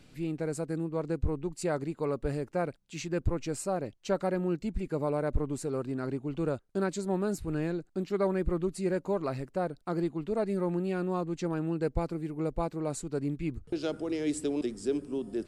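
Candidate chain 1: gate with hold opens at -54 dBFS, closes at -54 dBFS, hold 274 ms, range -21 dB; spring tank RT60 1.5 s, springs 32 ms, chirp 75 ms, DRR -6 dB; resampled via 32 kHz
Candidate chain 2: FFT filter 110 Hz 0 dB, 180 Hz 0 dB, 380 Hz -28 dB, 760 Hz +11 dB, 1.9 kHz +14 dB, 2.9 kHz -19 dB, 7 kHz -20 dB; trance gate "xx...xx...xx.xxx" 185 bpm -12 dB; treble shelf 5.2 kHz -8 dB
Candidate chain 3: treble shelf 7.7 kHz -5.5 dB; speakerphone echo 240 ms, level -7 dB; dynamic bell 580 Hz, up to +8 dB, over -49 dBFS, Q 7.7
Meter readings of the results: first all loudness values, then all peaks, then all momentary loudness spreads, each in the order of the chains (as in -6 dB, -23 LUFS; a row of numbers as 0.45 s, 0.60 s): -25.5 LUFS, -34.5 LUFS, -31.0 LUFS; -10.5 dBFS, -12.0 dBFS, -12.5 dBFS; 5 LU, 11 LU, 6 LU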